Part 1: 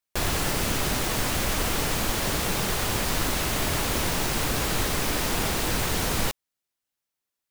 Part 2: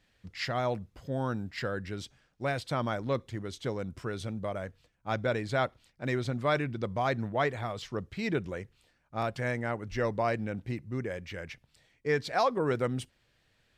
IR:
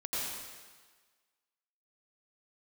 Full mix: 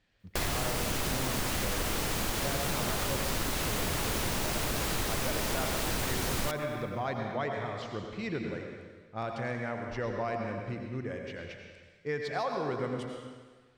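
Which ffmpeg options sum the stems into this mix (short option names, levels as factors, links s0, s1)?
-filter_complex "[0:a]adelay=200,volume=0.891,asplit=2[s0][s1];[s1]volume=0.0708[s2];[1:a]adynamicsmooth=sensitivity=3:basefreq=7900,volume=0.501,asplit=2[s3][s4];[s4]volume=0.631[s5];[2:a]atrim=start_sample=2205[s6];[s2][s5]amix=inputs=2:normalize=0[s7];[s7][s6]afir=irnorm=-1:irlink=0[s8];[s0][s3][s8]amix=inputs=3:normalize=0,acompressor=threshold=0.0316:ratio=2.5"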